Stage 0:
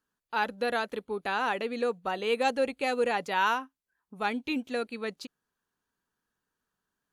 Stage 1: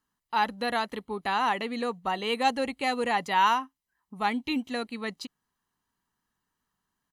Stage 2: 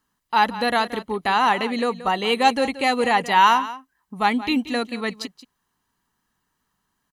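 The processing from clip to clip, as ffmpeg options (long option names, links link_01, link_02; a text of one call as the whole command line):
ffmpeg -i in.wav -af "aecho=1:1:1:0.49,volume=2dB" out.wav
ffmpeg -i in.wav -af "aecho=1:1:178:0.178,volume=7.5dB" out.wav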